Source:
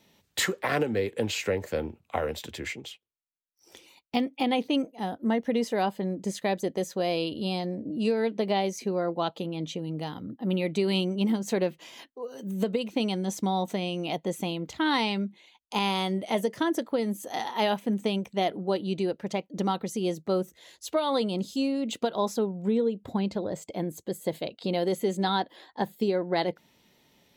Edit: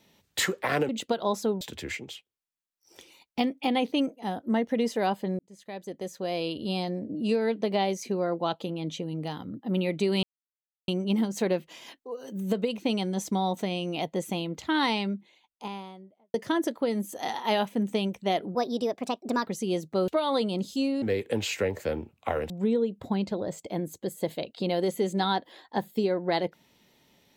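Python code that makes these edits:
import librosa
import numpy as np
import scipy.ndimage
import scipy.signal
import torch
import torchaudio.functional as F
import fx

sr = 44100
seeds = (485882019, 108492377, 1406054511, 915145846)

y = fx.studio_fade_out(x, sr, start_s=14.93, length_s=1.52)
y = fx.edit(y, sr, fx.swap(start_s=0.89, length_s=1.48, other_s=21.82, other_length_s=0.72),
    fx.fade_in_span(start_s=6.15, length_s=1.34),
    fx.insert_silence(at_s=10.99, length_s=0.65),
    fx.speed_span(start_s=18.66, length_s=1.15, speed=1.25),
    fx.cut(start_s=20.42, length_s=0.46), tone=tone)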